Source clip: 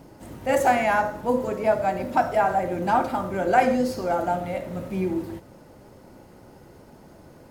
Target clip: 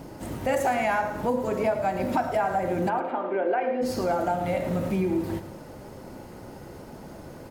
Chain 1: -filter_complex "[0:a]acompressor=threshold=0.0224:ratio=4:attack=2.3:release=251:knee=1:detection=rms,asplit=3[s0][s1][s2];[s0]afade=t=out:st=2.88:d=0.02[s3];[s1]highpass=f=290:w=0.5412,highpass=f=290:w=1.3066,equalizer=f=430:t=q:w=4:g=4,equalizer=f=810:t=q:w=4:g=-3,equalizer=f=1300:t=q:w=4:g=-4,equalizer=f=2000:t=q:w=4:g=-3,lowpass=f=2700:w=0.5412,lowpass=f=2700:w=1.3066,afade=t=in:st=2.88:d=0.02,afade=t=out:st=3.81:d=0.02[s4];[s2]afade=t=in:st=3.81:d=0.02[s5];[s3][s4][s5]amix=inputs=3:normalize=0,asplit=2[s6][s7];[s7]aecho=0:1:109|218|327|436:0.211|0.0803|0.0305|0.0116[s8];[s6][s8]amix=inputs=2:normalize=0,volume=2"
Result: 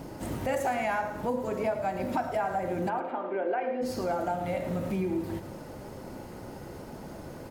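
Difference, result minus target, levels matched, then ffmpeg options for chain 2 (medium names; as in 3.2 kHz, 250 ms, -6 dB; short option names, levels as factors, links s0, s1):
compression: peak gain reduction +4.5 dB
-filter_complex "[0:a]acompressor=threshold=0.0447:ratio=4:attack=2.3:release=251:knee=1:detection=rms,asplit=3[s0][s1][s2];[s0]afade=t=out:st=2.88:d=0.02[s3];[s1]highpass=f=290:w=0.5412,highpass=f=290:w=1.3066,equalizer=f=430:t=q:w=4:g=4,equalizer=f=810:t=q:w=4:g=-3,equalizer=f=1300:t=q:w=4:g=-4,equalizer=f=2000:t=q:w=4:g=-3,lowpass=f=2700:w=0.5412,lowpass=f=2700:w=1.3066,afade=t=in:st=2.88:d=0.02,afade=t=out:st=3.81:d=0.02[s4];[s2]afade=t=in:st=3.81:d=0.02[s5];[s3][s4][s5]amix=inputs=3:normalize=0,asplit=2[s6][s7];[s7]aecho=0:1:109|218|327|436:0.211|0.0803|0.0305|0.0116[s8];[s6][s8]amix=inputs=2:normalize=0,volume=2"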